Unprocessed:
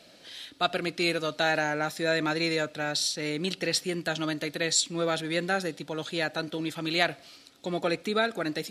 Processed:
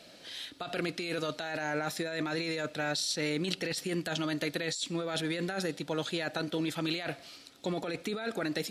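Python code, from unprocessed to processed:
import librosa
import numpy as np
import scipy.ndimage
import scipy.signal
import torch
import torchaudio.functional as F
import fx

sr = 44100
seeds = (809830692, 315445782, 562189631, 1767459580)

y = fx.over_compress(x, sr, threshold_db=-31.0, ratio=-1.0)
y = y * librosa.db_to_amplitude(-2.0)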